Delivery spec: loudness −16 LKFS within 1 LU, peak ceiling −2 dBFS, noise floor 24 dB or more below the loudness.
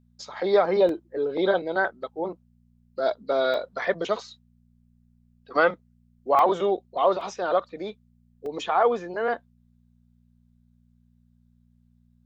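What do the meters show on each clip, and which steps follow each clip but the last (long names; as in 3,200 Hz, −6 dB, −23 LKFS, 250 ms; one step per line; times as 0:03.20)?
number of dropouts 5; longest dropout 2.1 ms; mains hum 60 Hz; hum harmonics up to 240 Hz; level of the hum −58 dBFS; integrated loudness −25.5 LKFS; sample peak −9.0 dBFS; target loudness −16.0 LKFS
→ repair the gap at 0:00.89/0:03.54/0:06.39/0:07.21/0:08.46, 2.1 ms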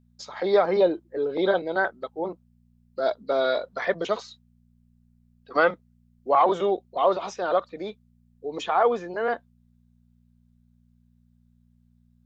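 number of dropouts 0; mains hum 60 Hz; hum harmonics up to 240 Hz; level of the hum −58 dBFS
→ hum removal 60 Hz, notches 4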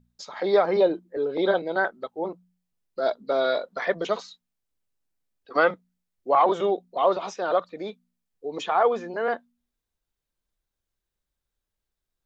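mains hum none found; integrated loudness −25.0 LKFS; sample peak −9.0 dBFS; target loudness −16.0 LKFS
→ level +9 dB
brickwall limiter −2 dBFS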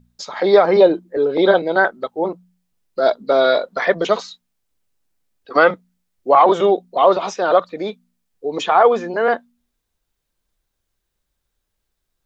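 integrated loudness −16.5 LKFS; sample peak −2.0 dBFS; background noise floor −76 dBFS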